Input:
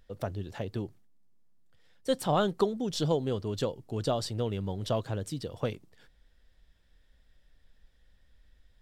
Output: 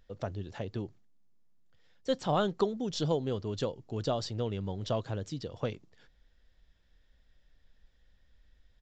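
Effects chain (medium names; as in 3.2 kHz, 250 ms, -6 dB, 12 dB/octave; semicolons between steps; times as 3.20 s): resampled via 16 kHz; trim -2 dB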